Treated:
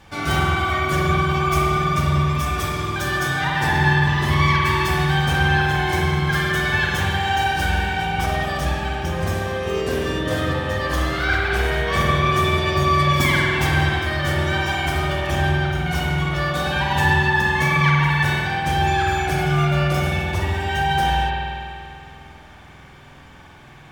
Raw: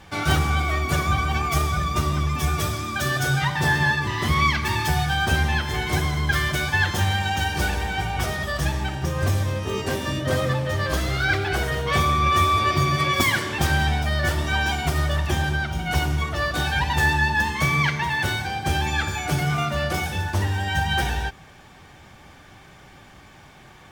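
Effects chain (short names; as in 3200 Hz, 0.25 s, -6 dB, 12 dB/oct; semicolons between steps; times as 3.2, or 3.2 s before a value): spring tank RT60 2.4 s, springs 48 ms, chirp 25 ms, DRR -3.5 dB; gain -2 dB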